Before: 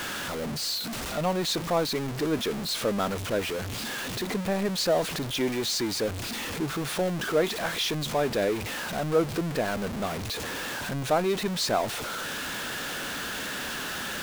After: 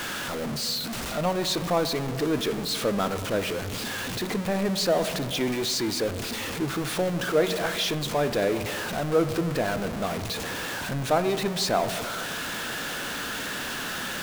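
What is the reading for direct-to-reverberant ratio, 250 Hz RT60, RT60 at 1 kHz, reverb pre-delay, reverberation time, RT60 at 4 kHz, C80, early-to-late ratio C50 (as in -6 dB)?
10.0 dB, 2.7 s, 2.1 s, 4 ms, 2.1 s, 0.95 s, 13.0 dB, 11.5 dB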